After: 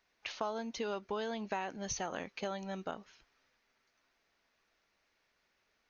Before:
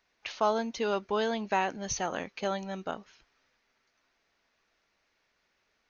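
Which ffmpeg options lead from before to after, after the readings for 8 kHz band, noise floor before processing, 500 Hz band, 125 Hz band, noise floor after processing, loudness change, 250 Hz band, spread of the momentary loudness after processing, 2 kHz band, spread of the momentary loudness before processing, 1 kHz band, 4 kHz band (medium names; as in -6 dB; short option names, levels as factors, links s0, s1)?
no reading, -76 dBFS, -8.0 dB, -5.5 dB, -78 dBFS, -8.0 dB, -6.0 dB, 5 LU, -7.5 dB, 9 LU, -9.0 dB, -6.0 dB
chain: -af "acompressor=threshold=0.0251:ratio=4,volume=0.75"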